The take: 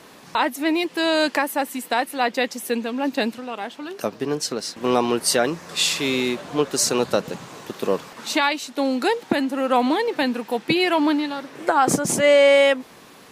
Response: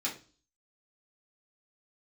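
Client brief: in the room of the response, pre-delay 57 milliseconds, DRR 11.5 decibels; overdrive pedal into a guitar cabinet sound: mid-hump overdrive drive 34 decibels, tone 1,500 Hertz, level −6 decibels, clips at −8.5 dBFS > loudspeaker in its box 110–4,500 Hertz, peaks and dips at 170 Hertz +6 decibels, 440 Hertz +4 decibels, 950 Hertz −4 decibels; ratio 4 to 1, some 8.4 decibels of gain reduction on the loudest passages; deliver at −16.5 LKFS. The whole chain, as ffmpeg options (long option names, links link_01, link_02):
-filter_complex "[0:a]acompressor=threshold=-21dB:ratio=4,asplit=2[link_01][link_02];[1:a]atrim=start_sample=2205,adelay=57[link_03];[link_02][link_03]afir=irnorm=-1:irlink=0,volume=-16dB[link_04];[link_01][link_04]amix=inputs=2:normalize=0,asplit=2[link_05][link_06];[link_06]highpass=frequency=720:poles=1,volume=34dB,asoftclip=type=tanh:threshold=-8.5dB[link_07];[link_05][link_07]amix=inputs=2:normalize=0,lowpass=frequency=1500:poles=1,volume=-6dB,highpass=110,equalizer=frequency=170:width_type=q:width=4:gain=6,equalizer=frequency=440:width_type=q:width=4:gain=4,equalizer=frequency=950:width_type=q:width=4:gain=-4,lowpass=frequency=4500:width=0.5412,lowpass=frequency=4500:width=1.3066,volume=1dB"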